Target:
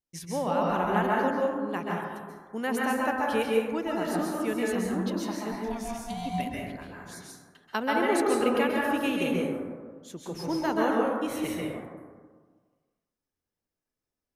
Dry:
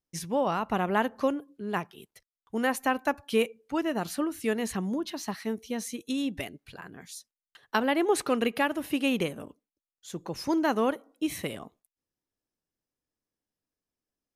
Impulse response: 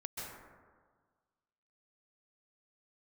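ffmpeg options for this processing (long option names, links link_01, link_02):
-filter_complex "[0:a]asplit=3[link_01][link_02][link_03];[link_01]afade=type=out:start_time=5.51:duration=0.02[link_04];[link_02]aeval=exprs='val(0)*sin(2*PI*460*n/s)':channel_layout=same,afade=type=in:start_time=5.51:duration=0.02,afade=type=out:start_time=6.25:duration=0.02[link_05];[link_03]afade=type=in:start_time=6.25:duration=0.02[link_06];[link_04][link_05][link_06]amix=inputs=3:normalize=0[link_07];[1:a]atrim=start_sample=2205[link_08];[link_07][link_08]afir=irnorm=-1:irlink=0,volume=1dB"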